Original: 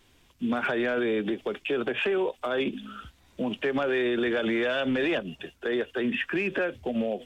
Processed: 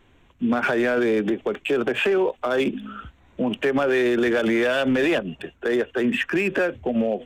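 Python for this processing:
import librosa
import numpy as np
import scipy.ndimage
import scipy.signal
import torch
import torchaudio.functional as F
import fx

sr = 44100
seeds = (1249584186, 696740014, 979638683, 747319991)

y = fx.wiener(x, sr, points=9)
y = y * 10.0 ** (6.0 / 20.0)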